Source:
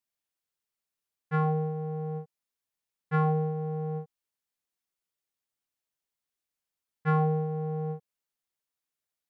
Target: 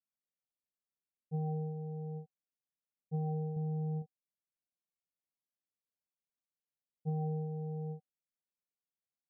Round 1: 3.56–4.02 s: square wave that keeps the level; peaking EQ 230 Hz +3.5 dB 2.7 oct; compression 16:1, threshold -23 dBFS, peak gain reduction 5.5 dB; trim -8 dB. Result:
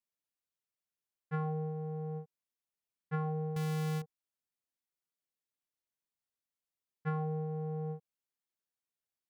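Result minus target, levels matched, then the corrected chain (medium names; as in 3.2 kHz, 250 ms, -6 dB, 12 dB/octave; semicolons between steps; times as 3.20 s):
1 kHz band +4.0 dB
3.56–4.02 s: square wave that keeps the level; rippled Chebyshev low-pass 780 Hz, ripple 6 dB; peaking EQ 230 Hz +3.5 dB 2.7 oct; compression 16:1, threshold -23 dBFS, peak gain reduction 3.5 dB; trim -8 dB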